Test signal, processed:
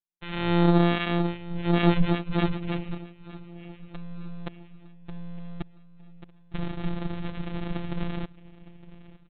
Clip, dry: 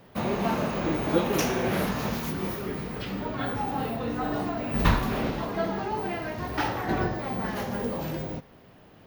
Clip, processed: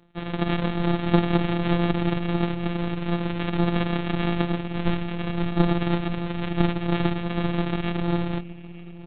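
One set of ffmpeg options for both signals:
ffmpeg -i in.wav -filter_complex "[0:a]lowpass=1700,aecho=1:1:1.1:0.91,dynaudnorm=framelen=130:gausssize=5:maxgain=12.5dB,aresample=8000,acrusher=samples=16:mix=1:aa=0.000001,aresample=44100,tremolo=f=170:d=0.947,afftfilt=real='hypot(re,im)*cos(PI*b)':imag='0':win_size=1024:overlap=0.75,asplit=2[link_01][link_02];[link_02]aecho=0:1:911|1822|2733|3644:0.106|0.054|0.0276|0.0141[link_03];[link_01][link_03]amix=inputs=2:normalize=0,volume=-1dB" out.wav

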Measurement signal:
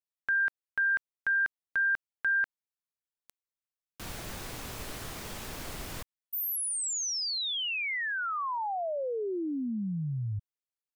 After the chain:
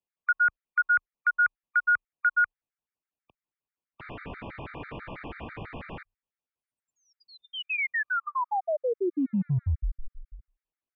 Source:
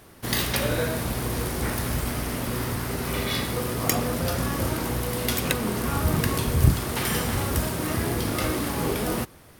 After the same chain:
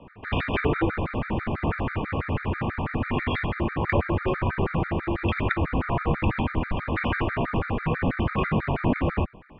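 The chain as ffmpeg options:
ffmpeg -i in.wav -filter_complex "[0:a]lowshelf=frequency=270:gain=7,bandreject=frequency=60:width_type=h:width=6,bandreject=frequency=120:width_type=h:width=6,acrossover=split=170|1200|1900[link_01][link_02][link_03][link_04];[link_02]aeval=exprs='clip(val(0),-1,0.0398)':channel_layout=same[link_05];[link_01][link_05][link_03][link_04]amix=inputs=4:normalize=0,highpass=frequency=200:width_type=q:width=0.5412,highpass=frequency=200:width_type=q:width=1.307,lowpass=frequency=2800:width_type=q:width=0.5176,lowpass=frequency=2800:width_type=q:width=0.7071,lowpass=frequency=2800:width_type=q:width=1.932,afreqshift=-150,afftfilt=real='re*gt(sin(2*PI*6.1*pts/sr)*(1-2*mod(floor(b*sr/1024/1200),2)),0)':imag='im*gt(sin(2*PI*6.1*pts/sr)*(1-2*mod(floor(b*sr/1024/1200),2)),0)':win_size=1024:overlap=0.75,volume=6dB" out.wav

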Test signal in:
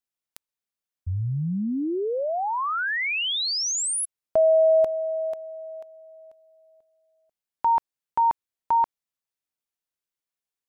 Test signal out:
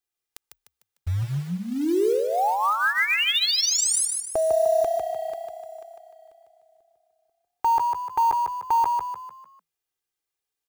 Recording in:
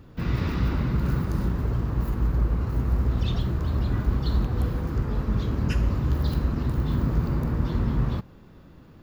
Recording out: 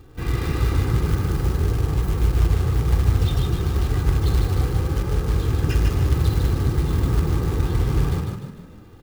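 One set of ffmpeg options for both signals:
ffmpeg -i in.wav -filter_complex "[0:a]aecho=1:1:2.5:0.74,acrusher=bits=5:mode=log:mix=0:aa=0.000001,asplit=6[link_01][link_02][link_03][link_04][link_05][link_06];[link_02]adelay=150,afreqshift=32,volume=-4dB[link_07];[link_03]adelay=300,afreqshift=64,volume=-11.5dB[link_08];[link_04]adelay=450,afreqshift=96,volume=-19.1dB[link_09];[link_05]adelay=600,afreqshift=128,volume=-26.6dB[link_10];[link_06]adelay=750,afreqshift=160,volume=-34.1dB[link_11];[link_01][link_07][link_08][link_09][link_10][link_11]amix=inputs=6:normalize=0" out.wav

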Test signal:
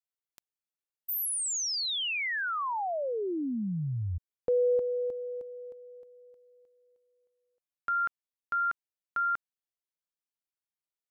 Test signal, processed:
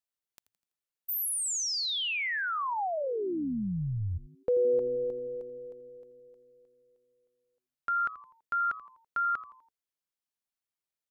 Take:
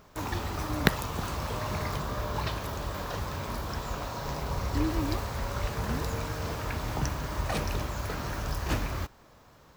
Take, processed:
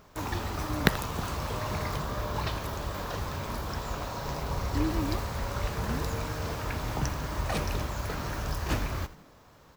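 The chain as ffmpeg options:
ffmpeg -i in.wav -filter_complex "[0:a]asplit=5[link_01][link_02][link_03][link_04][link_05];[link_02]adelay=83,afreqshift=-120,volume=-16dB[link_06];[link_03]adelay=166,afreqshift=-240,volume=-23.3dB[link_07];[link_04]adelay=249,afreqshift=-360,volume=-30.7dB[link_08];[link_05]adelay=332,afreqshift=-480,volume=-38dB[link_09];[link_01][link_06][link_07][link_08][link_09]amix=inputs=5:normalize=0" out.wav

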